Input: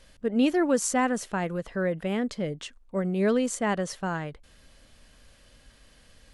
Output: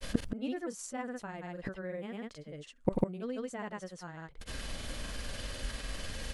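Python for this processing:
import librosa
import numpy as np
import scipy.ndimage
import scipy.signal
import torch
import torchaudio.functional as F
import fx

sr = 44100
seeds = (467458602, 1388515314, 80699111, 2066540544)

y = fx.gate_flip(x, sr, shuts_db=-29.0, range_db=-30)
y = fx.granulator(y, sr, seeds[0], grain_ms=100.0, per_s=20.0, spray_ms=100.0, spread_st=0)
y = y * librosa.db_to_amplitude(17.0)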